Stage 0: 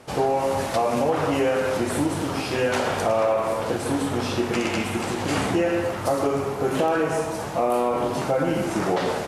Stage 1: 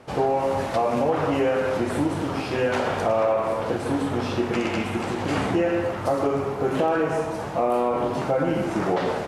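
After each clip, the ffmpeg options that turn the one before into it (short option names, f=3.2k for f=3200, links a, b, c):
-af "highshelf=f=4.9k:g=-11.5"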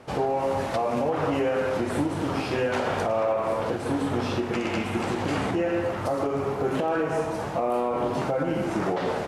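-af "alimiter=limit=-16.5dB:level=0:latency=1:release=228"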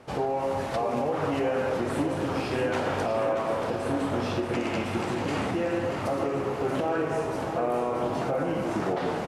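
-af "aecho=1:1:633|1266|1899|2532|3165|3798|4431:0.398|0.235|0.139|0.0818|0.0482|0.0285|0.0168,volume=-2.5dB"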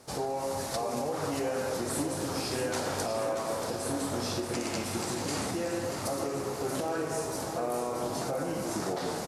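-af "aexciter=amount=6.8:drive=2.8:freq=4.1k,volume=-5dB"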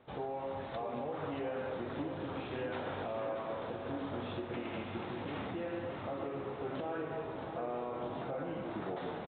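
-af "aresample=8000,aresample=44100,volume=-6.5dB"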